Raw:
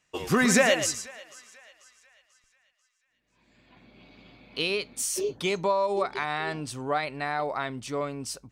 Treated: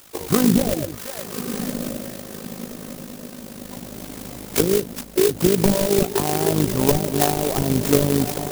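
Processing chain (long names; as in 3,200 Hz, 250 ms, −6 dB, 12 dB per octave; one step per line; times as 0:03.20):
hearing-aid frequency compression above 1,800 Hz 1.5 to 1
automatic gain control gain up to 15.5 dB
in parallel at −10 dB: bit-depth reduction 6 bits, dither triangular
on the sum: wrap-around overflow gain 3.5 dB
treble cut that deepens with the level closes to 330 Hz, closed at −10 dBFS
feedback delay with all-pass diffusion 1,173 ms, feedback 51%, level −8.5 dB
amplitude modulation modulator 52 Hz, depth 55%
converter with an unsteady clock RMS 0.14 ms
level +3.5 dB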